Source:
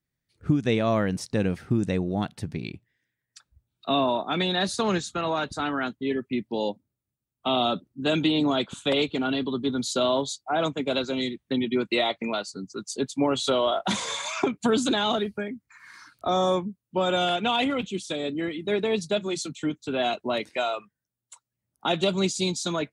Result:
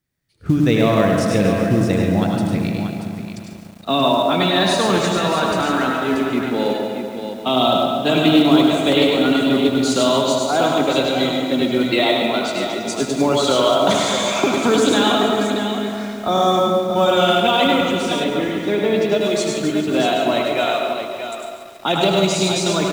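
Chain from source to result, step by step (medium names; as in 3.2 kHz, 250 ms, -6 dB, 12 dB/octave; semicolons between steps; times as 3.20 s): on a send: multi-tap echo 77/100/107/632 ms -10/-5/-9.5/-8 dB; on the sum: algorithmic reverb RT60 1.1 s, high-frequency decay 0.35×, pre-delay 105 ms, DRR 5.5 dB; in parallel at -8.5 dB: short-mantissa float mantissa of 2-bit; 18.24–19.21 s: on the sum: peaking EQ 9.8 kHz -14.5 dB 1.5 oct; bit-crushed delay 140 ms, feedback 80%, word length 7-bit, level -13 dB; trim +2.5 dB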